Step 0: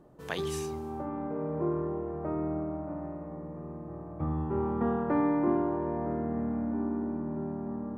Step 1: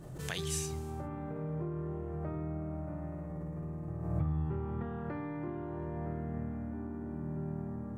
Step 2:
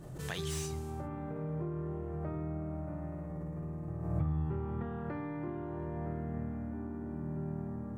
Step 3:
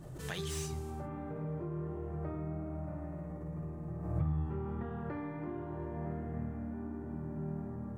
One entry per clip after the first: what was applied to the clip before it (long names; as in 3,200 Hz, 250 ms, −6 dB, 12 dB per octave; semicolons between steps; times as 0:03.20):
downward compressor, threshold −32 dBFS, peak gain reduction 9.5 dB; octave-band graphic EQ 125/250/500/1,000/8,000 Hz +7/−10/−6/−9/+7 dB; background raised ahead of every attack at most 44 dB per second; level +3 dB
slew-rate limiting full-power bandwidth 64 Hz
flanger 1.4 Hz, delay 0.8 ms, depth 4.7 ms, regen −52%; level +3 dB